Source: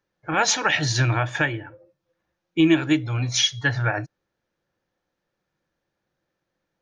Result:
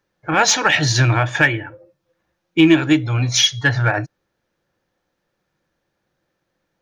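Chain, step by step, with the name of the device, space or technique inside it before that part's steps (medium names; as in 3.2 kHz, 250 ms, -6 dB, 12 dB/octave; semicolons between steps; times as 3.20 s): 1.42–2.66 s: dynamic bell 2.1 kHz, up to +6 dB, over -39 dBFS, Q 1.6; parallel distortion (in parallel at -11.5 dB: hard clipper -18.5 dBFS, distortion -9 dB); on the sum: trim +4 dB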